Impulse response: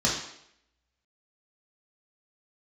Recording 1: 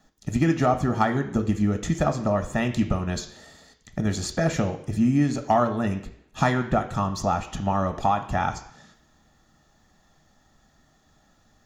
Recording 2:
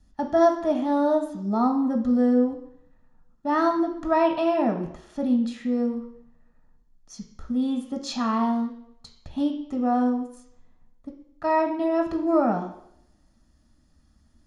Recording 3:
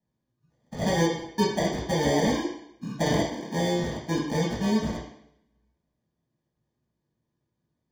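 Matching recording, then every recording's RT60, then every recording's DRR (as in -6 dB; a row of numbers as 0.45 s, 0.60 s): 3; 0.75 s, 0.75 s, 0.75 s; 7.5 dB, 3.5 dB, -5.0 dB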